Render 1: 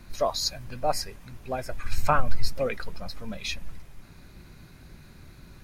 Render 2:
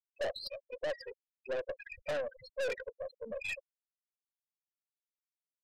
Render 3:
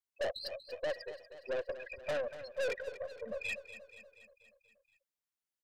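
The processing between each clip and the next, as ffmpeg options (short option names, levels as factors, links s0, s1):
-filter_complex "[0:a]asplit=3[s0][s1][s2];[s0]bandpass=f=530:t=q:w=8,volume=1[s3];[s1]bandpass=f=1840:t=q:w=8,volume=0.501[s4];[s2]bandpass=f=2480:t=q:w=8,volume=0.355[s5];[s3][s4][s5]amix=inputs=3:normalize=0,afftfilt=real='re*gte(hypot(re,im),0.00794)':imag='im*gte(hypot(re,im),0.00794)':win_size=1024:overlap=0.75,aeval=exprs='(tanh(141*val(0)+0.25)-tanh(0.25))/141':c=same,volume=3.55"
-af "aecho=1:1:239|478|717|956|1195|1434:0.224|0.132|0.0779|0.046|0.0271|0.016"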